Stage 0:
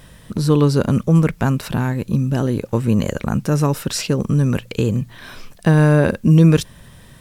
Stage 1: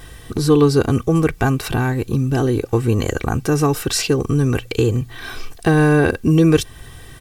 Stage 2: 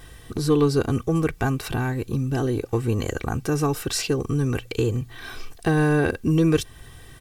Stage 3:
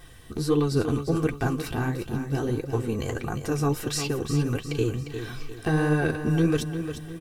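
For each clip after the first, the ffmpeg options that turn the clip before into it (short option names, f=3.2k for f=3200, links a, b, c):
-filter_complex "[0:a]aecho=1:1:2.6:0.72,asplit=2[a][b];[b]acompressor=threshold=-23dB:ratio=6,volume=-3dB[c];[a][c]amix=inputs=2:normalize=0,volume=-1dB"
-af "aeval=exprs='0.841*(cos(1*acos(clip(val(0)/0.841,-1,1)))-cos(1*PI/2))+0.015*(cos(6*acos(clip(val(0)/0.841,-1,1)))-cos(6*PI/2))':c=same,volume=-6dB"
-af "flanger=delay=5.5:depth=8.7:regen=32:speed=1.5:shape=sinusoidal,aecho=1:1:352|704|1056|1408|1760:0.355|0.145|0.0596|0.0245|0.01"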